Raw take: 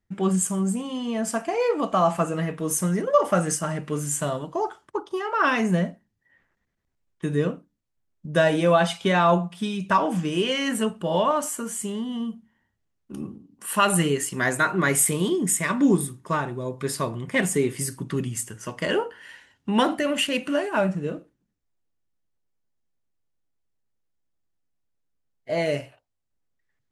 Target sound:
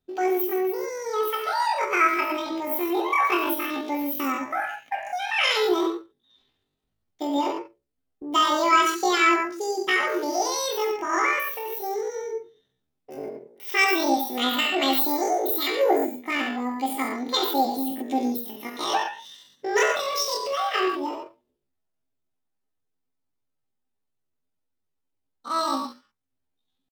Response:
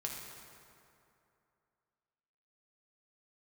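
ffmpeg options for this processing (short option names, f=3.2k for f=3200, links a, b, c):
-filter_complex "[1:a]atrim=start_sample=2205,atrim=end_sample=6615[a];[0:a][a]afir=irnorm=-1:irlink=0,asetrate=85689,aresample=44100,atempo=0.514651"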